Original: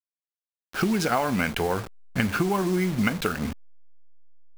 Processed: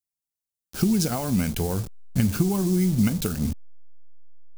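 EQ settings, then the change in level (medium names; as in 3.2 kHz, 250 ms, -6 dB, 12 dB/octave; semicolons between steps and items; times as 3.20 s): tone controls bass +10 dB, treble +10 dB; peaking EQ 1.6 kHz -9.5 dB 2.2 oct; -2.5 dB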